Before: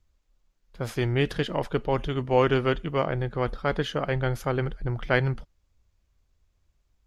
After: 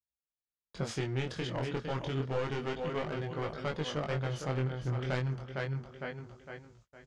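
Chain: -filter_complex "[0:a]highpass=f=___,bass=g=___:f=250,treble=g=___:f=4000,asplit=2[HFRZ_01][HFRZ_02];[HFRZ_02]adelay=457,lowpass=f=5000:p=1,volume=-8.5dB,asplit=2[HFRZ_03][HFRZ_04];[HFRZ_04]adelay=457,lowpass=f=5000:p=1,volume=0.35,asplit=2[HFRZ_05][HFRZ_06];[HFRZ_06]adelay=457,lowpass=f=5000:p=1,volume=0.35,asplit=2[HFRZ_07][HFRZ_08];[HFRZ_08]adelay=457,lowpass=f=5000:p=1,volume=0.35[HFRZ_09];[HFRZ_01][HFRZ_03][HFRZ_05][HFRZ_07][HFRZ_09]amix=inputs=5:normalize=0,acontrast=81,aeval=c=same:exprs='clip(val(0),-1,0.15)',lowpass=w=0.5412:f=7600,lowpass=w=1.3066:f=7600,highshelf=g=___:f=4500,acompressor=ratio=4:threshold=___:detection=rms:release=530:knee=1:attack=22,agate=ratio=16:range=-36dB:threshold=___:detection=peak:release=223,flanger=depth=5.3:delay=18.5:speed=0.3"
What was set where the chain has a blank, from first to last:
83, 2, 5, 4, -30dB, -58dB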